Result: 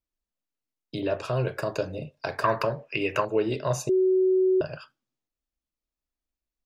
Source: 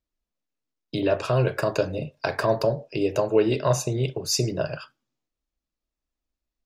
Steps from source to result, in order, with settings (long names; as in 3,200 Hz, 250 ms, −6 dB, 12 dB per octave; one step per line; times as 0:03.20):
0:02.44–0:03.25: flat-topped bell 1,700 Hz +15 dB
0:03.89–0:04.61: beep over 374 Hz −13 dBFS
level −5 dB